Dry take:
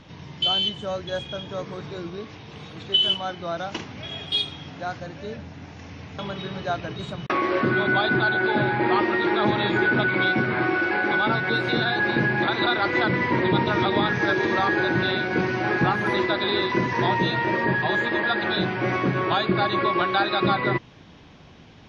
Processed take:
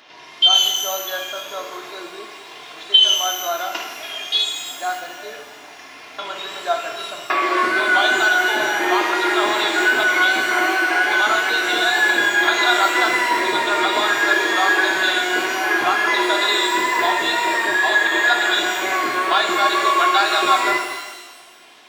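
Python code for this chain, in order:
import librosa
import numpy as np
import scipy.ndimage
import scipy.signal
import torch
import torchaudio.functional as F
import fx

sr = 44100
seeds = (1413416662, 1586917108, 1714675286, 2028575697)

y = fx.wow_flutter(x, sr, seeds[0], rate_hz=2.1, depth_cents=40.0)
y = scipy.signal.sosfilt(scipy.signal.butter(2, 670.0, 'highpass', fs=sr, output='sos'), y)
y = y + 0.48 * np.pad(y, (int(2.9 * sr / 1000.0), 0))[:len(y)]
y = fx.rev_shimmer(y, sr, seeds[1], rt60_s=1.2, semitones=12, shimmer_db=-8, drr_db=3.5)
y = y * 10.0 ** (5.0 / 20.0)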